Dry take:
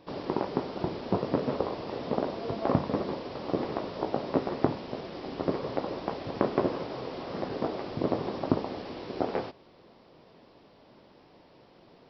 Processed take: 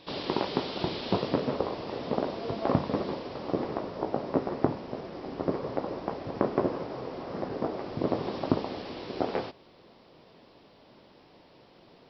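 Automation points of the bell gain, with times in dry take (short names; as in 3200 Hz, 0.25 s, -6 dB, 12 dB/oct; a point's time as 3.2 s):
bell 3600 Hz 1.5 oct
1.13 s +13 dB
1.53 s +2 dB
3.08 s +2 dB
3.92 s -6 dB
7.7 s -6 dB
8.37 s +3.5 dB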